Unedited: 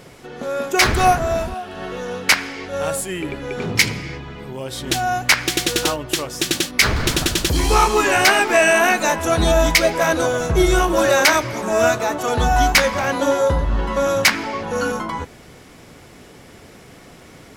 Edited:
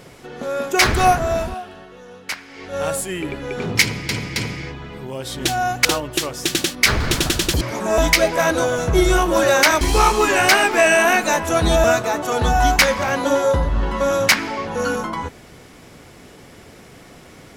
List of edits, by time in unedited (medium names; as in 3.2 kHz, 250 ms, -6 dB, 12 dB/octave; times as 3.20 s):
1.52–2.80 s: dip -13 dB, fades 0.33 s
3.82–4.09 s: loop, 3 plays
5.31–5.81 s: delete
7.57–9.60 s: swap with 11.43–11.80 s